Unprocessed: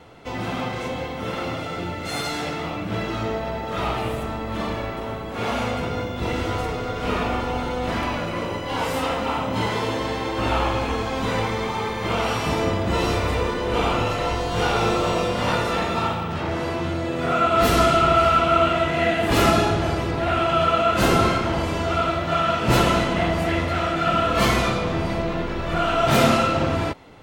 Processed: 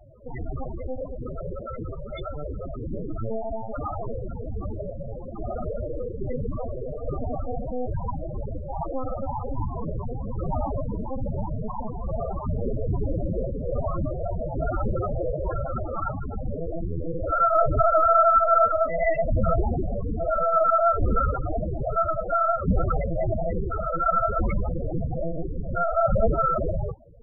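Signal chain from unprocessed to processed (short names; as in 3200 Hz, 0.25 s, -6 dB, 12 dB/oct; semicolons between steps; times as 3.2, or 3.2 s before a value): LPC vocoder at 8 kHz pitch kept; loudest bins only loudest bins 8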